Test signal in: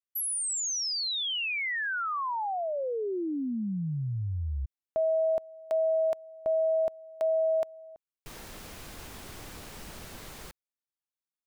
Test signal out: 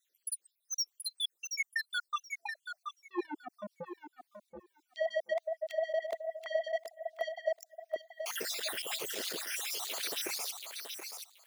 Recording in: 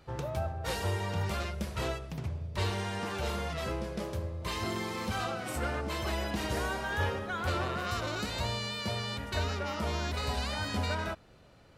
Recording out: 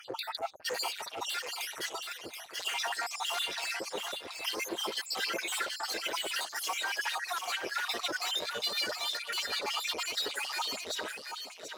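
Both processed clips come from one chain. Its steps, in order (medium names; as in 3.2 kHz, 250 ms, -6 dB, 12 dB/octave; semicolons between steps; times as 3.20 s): random holes in the spectrogram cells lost 66%; peaking EQ 1 kHz -9.5 dB 1.7 oct; in parallel at +2.5 dB: compressor with a negative ratio -46 dBFS, ratio -1; on the sum: saturation -39 dBFS; LFO high-pass sine 6.5 Hz 380–4100 Hz; on a send: thinning echo 728 ms, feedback 16%, high-pass 490 Hz, level -6 dB; on the sum: trim +6 dB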